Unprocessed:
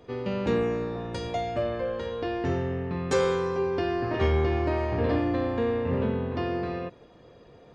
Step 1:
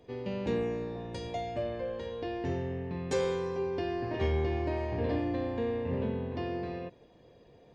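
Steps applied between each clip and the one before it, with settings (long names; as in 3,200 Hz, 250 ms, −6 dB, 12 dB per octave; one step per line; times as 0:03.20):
parametric band 1,300 Hz −11 dB 0.36 octaves
level −5.5 dB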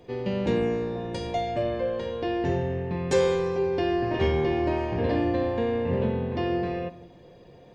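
rectangular room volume 2,700 cubic metres, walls furnished, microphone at 0.91 metres
level +6.5 dB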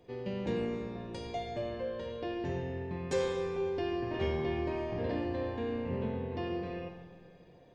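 comb and all-pass reverb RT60 2 s, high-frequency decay 0.8×, pre-delay 30 ms, DRR 6.5 dB
level −9 dB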